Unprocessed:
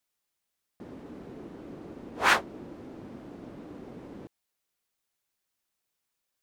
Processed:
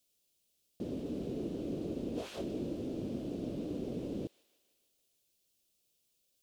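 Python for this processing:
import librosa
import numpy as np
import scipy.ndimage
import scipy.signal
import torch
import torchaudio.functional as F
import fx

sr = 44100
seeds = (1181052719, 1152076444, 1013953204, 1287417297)

p1 = fx.band_shelf(x, sr, hz=1300.0, db=-15.0, octaves=1.7)
p2 = fx.over_compress(p1, sr, threshold_db=-41.0, ratio=-1.0)
p3 = p2 + fx.echo_wet_highpass(p2, sr, ms=153, feedback_pct=62, hz=1500.0, wet_db=-14, dry=0)
y = F.gain(torch.from_numpy(p3), 4.0).numpy()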